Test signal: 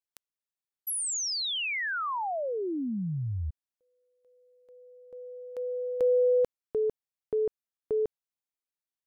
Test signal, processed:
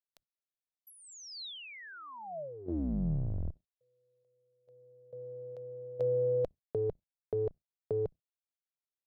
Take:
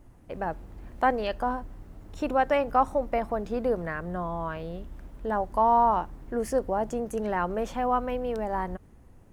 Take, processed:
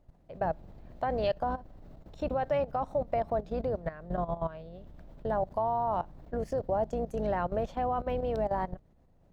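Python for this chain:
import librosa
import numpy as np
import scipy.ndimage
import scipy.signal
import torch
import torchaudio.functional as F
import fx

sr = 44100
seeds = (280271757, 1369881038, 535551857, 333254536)

y = fx.octave_divider(x, sr, octaves=2, level_db=1.0)
y = fx.level_steps(y, sr, step_db=15)
y = fx.graphic_eq_15(y, sr, hz=(160, 630, 4000, 10000), db=(6, 10, 7, -9))
y = F.gain(torch.from_numpy(y), -4.0).numpy()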